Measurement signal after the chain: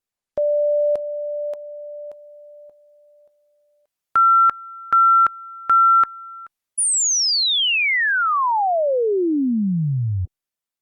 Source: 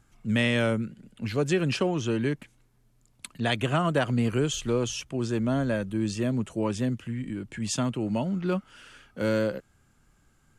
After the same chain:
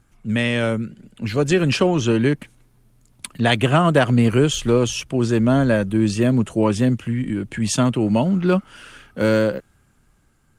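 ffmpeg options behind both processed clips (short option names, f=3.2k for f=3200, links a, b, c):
-af "dynaudnorm=f=430:g=7:m=6dB,volume=4dB" -ar 48000 -c:a libopus -b:a 32k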